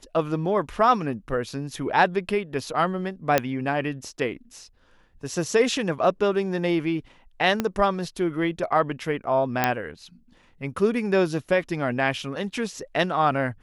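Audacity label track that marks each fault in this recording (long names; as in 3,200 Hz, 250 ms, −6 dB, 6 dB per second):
3.380000	3.380000	click −5 dBFS
7.600000	7.600000	click −10 dBFS
9.640000	9.640000	click −5 dBFS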